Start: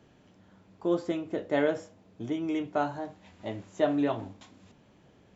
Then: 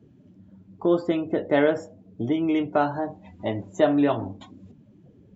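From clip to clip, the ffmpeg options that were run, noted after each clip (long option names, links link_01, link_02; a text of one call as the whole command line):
ffmpeg -i in.wav -filter_complex "[0:a]afftdn=noise_reduction=21:noise_floor=-51,asplit=2[link_01][link_02];[link_02]acompressor=threshold=-35dB:ratio=6,volume=1dB[link_03];[link_01][link_03]amix=inputs=2:normalize=0,volume=4dB" out.wav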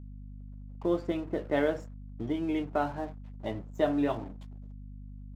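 ffmpeg -i in.wav -af "aeval=exprs='sgn(val(0))*max(abs(val(0))-0.00631,0)':channel_layout=same,aeval=exprs='val(0)+0.0158*(sin(2*PI*50*n/s)+sin(2*PI*2*50*n/s)/2+sin(2*PI*3*50*n/s)/3+sin(2*PI*4*50*n/s)/4+sin(2*PI*5*50*n/s)/5)':channel_layout=same,volume=-7dB" out.wav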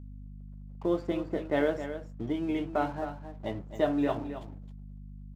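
ffmpeg -i in.wav -af "aecho=1:1:266:0.299" out.wav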